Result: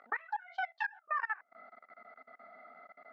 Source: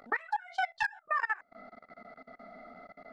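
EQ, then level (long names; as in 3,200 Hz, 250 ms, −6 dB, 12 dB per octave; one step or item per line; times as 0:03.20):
dynamic equaliser 1,700 Hz, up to −3 dB, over −41 dBFS, Q 1.1
resonant band-pass 1,500 Hz, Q 0.9
high-frequency loss of the air 110 metres
0.0 dB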